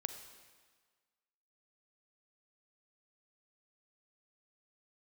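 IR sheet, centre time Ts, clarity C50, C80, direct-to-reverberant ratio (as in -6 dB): 21 ms, 8.5 dB, 10.0 dB, 8.0 dB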